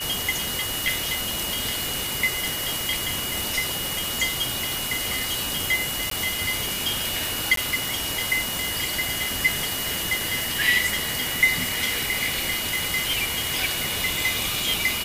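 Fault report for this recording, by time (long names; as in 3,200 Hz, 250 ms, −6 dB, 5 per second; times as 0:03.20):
surface crackle 26 per second −34 dBFS
whistle 2,900 Hz −31 dBFS
0:06.10–0:06.11: drop-out 13 ms
0:07.56–0:07.57: drop-out 13 ms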